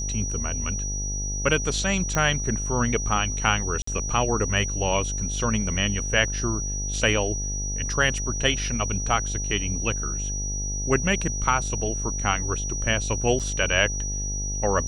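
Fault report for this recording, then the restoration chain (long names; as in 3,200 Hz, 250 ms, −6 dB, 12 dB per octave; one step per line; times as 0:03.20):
mains buzz 50 Hz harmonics 17 −30 dBFS
whistle 5,800 Hz −30 dBFS
0:02.15: click −10 dBFS
0:03.82–0:03.87: drop-out 54 ms
0:13.39–0:13.40: drop-out 7.2 ms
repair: click removal
hum removal 50 Hz, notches 17
notch filter 5,800 Hz, Q 30
repair the gap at 0:03.82, 54 ms
repair the gap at 0:13.39, 7.2 ms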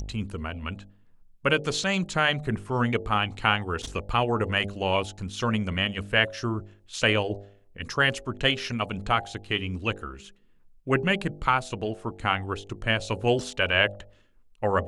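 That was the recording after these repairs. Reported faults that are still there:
none of them is left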